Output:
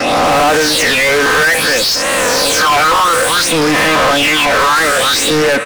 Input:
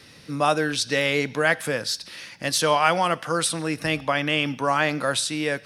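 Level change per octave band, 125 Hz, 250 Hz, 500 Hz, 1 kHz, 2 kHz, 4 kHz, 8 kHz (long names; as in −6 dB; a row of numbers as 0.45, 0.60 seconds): +5.5, +10.0, +11.5, +13.0, +14.0, +14.5, +14.5 decibels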